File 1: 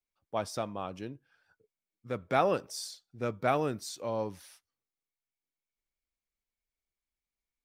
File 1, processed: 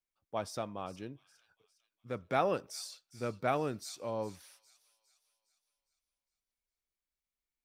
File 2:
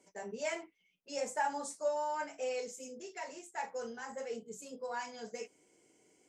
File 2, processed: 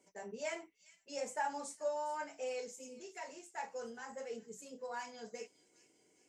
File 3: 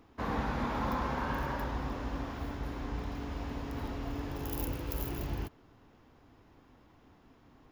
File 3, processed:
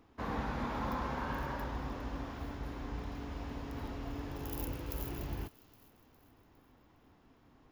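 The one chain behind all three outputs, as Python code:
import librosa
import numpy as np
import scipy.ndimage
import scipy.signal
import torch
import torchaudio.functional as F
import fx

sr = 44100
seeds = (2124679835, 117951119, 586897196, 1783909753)

y = fx.echo_wet_highpass(x, sr, ms=408, feedback_pct=47, hz=3200.0, wet_db=-14.5)
y = F.gain(torch.from_numpy(y), -3.5).numpy()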